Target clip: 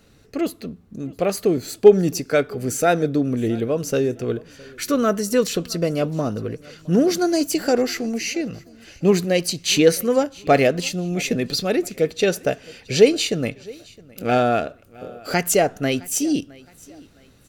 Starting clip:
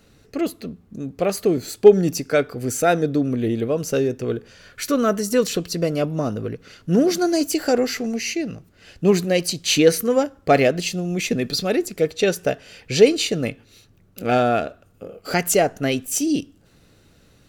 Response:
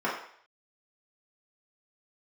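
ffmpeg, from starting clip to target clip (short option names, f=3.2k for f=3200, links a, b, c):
-af "aecho=1:1:664|1328:0.0668|0.0234"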